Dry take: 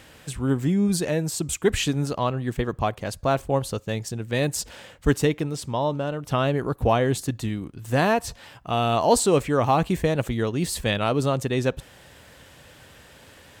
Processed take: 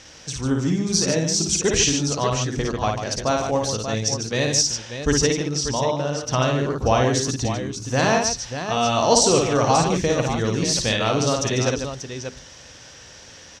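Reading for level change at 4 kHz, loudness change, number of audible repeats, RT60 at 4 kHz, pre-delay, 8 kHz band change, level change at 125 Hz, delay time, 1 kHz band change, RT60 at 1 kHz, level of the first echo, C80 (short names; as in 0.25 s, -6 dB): +9.0 dB, +3.5 dB, 3, none, none, +10.5 dB, +1.5 dB, 55 ms, +2.5 dB, none, -3.5 dB, none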